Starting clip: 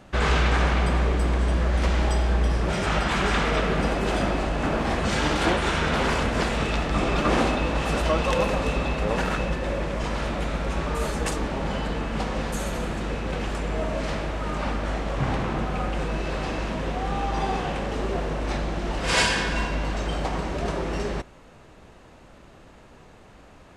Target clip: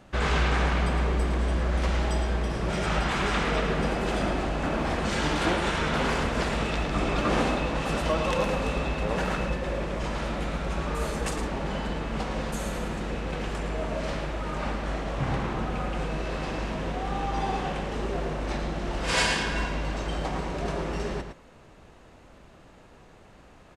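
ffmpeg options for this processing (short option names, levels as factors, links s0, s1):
-filter_complex "[0:a]asplit=2[s0][s1];[s1]adelay=110.8,volume=0.447,highshelf=f=4000:g=-2.49[s2];[s0][s2]amix=inputs=2:normalize=0,volume=0.668"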